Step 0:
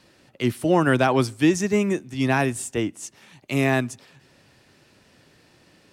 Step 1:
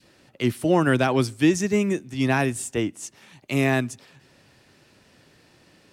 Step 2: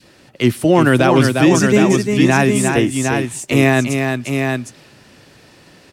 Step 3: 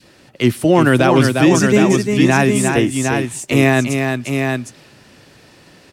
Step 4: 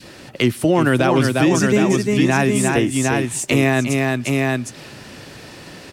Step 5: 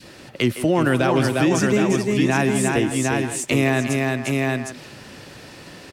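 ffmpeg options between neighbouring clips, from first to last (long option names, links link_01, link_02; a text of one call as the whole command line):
ffmpeg -i in.wav -af "adynamicequalizer=threshold=0.0158:dfrequency=910:dqfactor=0.93:tfrequency=910:tqfactor=0.93:attack=5:release=100:ratio=0.375:range=3:mode=cutabove:tftype=bell" out.wav
ffmpeg -i in.wav -af "aecho=1:1:352|759:0.501|0.501,alimiter=level_in=9.5dB:limit=-1dB:release=50:level=0:latency=1,volume=-1dB" out.wav
ffmpeg -i in.wav -af anull out.wav
ffmpeg -i in.wav -af "acompressor=threshold=-30dB:ratio=2,volume=8dB" out.wav
ffmpeg -i in.wav -filter_complex "[0:a]asplit=2[link_01][link_02];[link_02]adelay=160,highpass=300,lowpass=3400,asoftclip=type=hard:threshold=-14dB,volume=-9dB[link_03];[link_01][link_03]amix=inputs=2:normalize=0,volume=-3dB" out.wav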